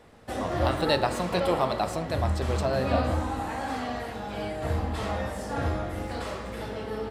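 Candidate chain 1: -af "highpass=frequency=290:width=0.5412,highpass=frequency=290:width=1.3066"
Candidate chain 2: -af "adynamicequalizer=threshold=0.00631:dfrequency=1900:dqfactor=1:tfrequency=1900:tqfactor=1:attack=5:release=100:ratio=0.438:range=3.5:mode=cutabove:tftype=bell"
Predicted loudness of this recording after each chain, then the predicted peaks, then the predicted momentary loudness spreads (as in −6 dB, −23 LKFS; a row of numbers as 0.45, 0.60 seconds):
−30.5, −30.0 LKFS; −9.5, −10.5 dBFS; 10, 9 LU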